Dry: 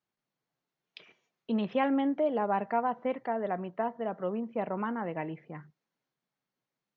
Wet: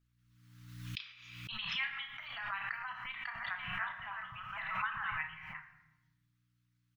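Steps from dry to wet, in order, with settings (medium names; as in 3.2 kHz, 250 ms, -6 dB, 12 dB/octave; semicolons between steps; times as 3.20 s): 3.03–5.12 s: chunks repeated in reverse 323 ms, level -2 dB; Chebyshev band-stop 120–1200 Hz, order 3; tone controls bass -3 dB, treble -4 dB; harmonic-percussive split harmonic -18 dB; peaking EQ 580 Hz -7 dB 2.9 oct; hum 60 Hz, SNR 31 dB; doubling 32 ms -9 dB; simulated room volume 500 m³, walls mixed, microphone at 0.72 m; swell ahead of each attack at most 43 dB/s; trim +10 dB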